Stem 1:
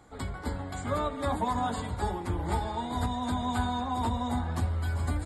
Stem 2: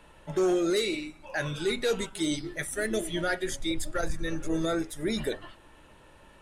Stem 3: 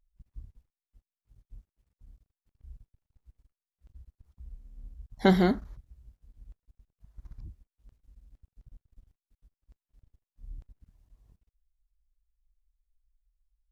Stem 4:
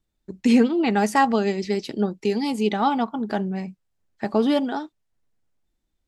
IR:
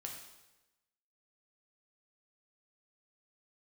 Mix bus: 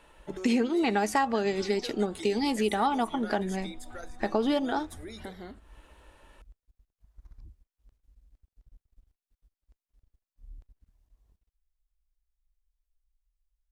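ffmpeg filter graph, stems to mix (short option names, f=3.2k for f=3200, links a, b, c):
-filter_complex "[0:a]bandreject=f=1k:w=7.1,acrossover=split=3000[a][b];[b]acompressor=threshold=-53dB:ratio=4:attack=1:release=60[c];[a][c]amix=inputs=2:normalize=0,adelay=350,volume=-10.5dB[d];[1:a]volume=-2dB[e];[2:a]volume=-3dB[f];[3:a]volume=0.5dB[g];[d][e][f]amix=inputs=3:normalize=0,acompressor=threshold=-38dB:ratio=6,volume=0dB[h];[g][h]amix=inputs=2:normalize=0,equalizer=f=140:w=1.1:g=-9,acompressor=threshold=-23dB:ratio=4"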